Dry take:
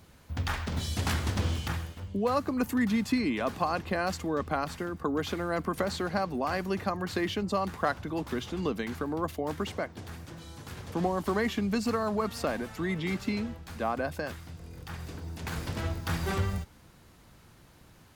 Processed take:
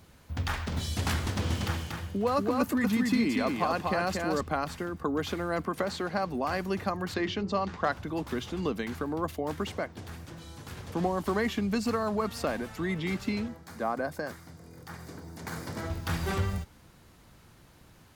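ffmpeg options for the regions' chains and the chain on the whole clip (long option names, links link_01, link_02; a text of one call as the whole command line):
ffmpeg -i in.wav -filter_complex "[0:a]asettb=1/sr,asplit=3[link_01][link_02][link_03];[link_01]atrim=end=1.264[link_04];[link_02]atrim=start=1.26:end=4.41,asetpts=PTS-STARTPTS,afade=type=in:duration=0.004:curve=qsin,afade=type=out:start_time=3.146:duration=0.004:curve=qsin,highpass=81,aecho=1:1:237:0.668,atrim=end_sample=138915[link_05];[link_03]atrim=start=4.406[link_06];[link_04][link_05]acrossfade=duration=0.004:curve1=hsin:curve2=qsin[link_07];[link_07][link_06]acrossfade=duration=0.004:curve1=qsin:curve2=hsin,asettb=1/sr,asplit=3[link_08][link_09][link_10];[link_08]atrim=end=5.644[link_11];[link_09]atrim=start=5.64:end=6.23,asetpts=PTS-STARTPTS,afade=type=in:duration=0.004:curve=qsin,afade=type=out:start_time=0.586:duration=0.004:curve=qsin,highpass=frequency=150:poles=1,highshelf=frequency=6600:gain=-4.5[link_12];[link_10]atrim=start=6.226[link_13];[link_11][link_12]acrossfade=duration=0.004:curve1=hsin:curve2=qsin[link_14];[link_14][link_13]acrossfade=duration=0.004:curve1=qsin:curve2=hsin,asettb=1/sr,asplit=3[link_15][link_16][link_17];[link_15]atrim=end=7.144[link_18];[link_16]atrim=start=7.14:end=7.92,asetpts=PTS-STARTPTS,afade=type=in:duration=0.004:curve=qsin,afade=type=out:start_time=0.776:duration=0.004:curve=qsin,lowpass=frequency=6200:width=0.5412,lowpass=frequency=6200:width=1.3066,bandreject=frequency=60:width_type=h:width=6,bandreject=frequency=120:width_type=h:width=6,bandreject=frequency=180:width_type=h:width=6,bandreject=frequency=240:width_type=h:width=6,bandreject=frequency=300:width_type=h:width=6,bandreject=frequency=360:width_type=h:width=6,bandreject=frequency=420:width_type=h:width=6,asoftclip=type=hard:threshold=-16dB[link_19];[link_17]atrim=start=7.916[link_20];[link_18][link_19]acrossfade=duration=0.004:curve1=hsin:curve2=qsin[link_21];[link_21][link_20]acrossfade=duration=0.004:curve1=qsin:curve2=hsin,asettb=1/sr,asplit=3[link_22][link_23][link_24];[link_22]atrim=end=13.484[link_25];[link_23]atrim=start=13.48:end=15.9,asetpts=PTS-STARTPTS,afade=type=in:duration=0.004:curve=qsin,afade=type=out:start_time=2.416:duration=0.004:curve=qsin,highpass=130,equalizer=frequency=3200:width=2.5:gain=-8,bandreject=frequency=2600:width=8.2[link_26];[link_24]atrim=start=15.896[link_27];[link_25][link_26]acrossfade=duration=0.004:curve1=hsin:curve2=qsin[link_28];[link_28][link_27]acrossfade=duration=0.004:curve1=qsin:curve2=hsin" out.wav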